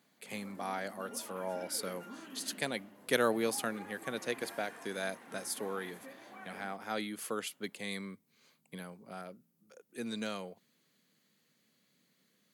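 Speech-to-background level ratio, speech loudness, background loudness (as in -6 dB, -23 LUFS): 12.5 dB, -38.0 LUFS, -50.5 LUFS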